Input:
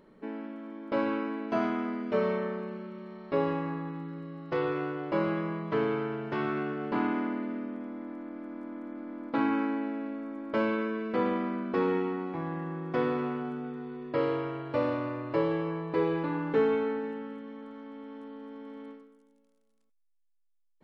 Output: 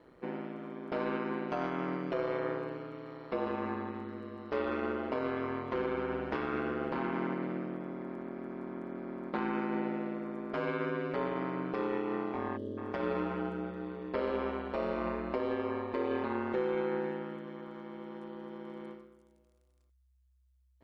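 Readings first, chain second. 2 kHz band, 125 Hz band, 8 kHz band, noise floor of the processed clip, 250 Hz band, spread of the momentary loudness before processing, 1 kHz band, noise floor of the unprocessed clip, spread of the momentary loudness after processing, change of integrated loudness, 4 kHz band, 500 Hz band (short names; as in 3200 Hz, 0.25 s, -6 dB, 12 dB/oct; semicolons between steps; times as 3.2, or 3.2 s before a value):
-2.5 dB, -5.0 dB, n/a, -69 dBFS, -4.5 dB, 13 LU, -2.5 dB, -70 dBFS, 10 LU, -4.0 dB, -3.0 dB, -3.5 dB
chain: limiter -25.5 dBFS, peak gain reduction 10 dB; spectral gain 12.57–12.78, 630–2800 Hz -25 dB; bell 180 Hz -12.5 dB 0.47 oct; ring modulator 64 Hz; gain +4 dB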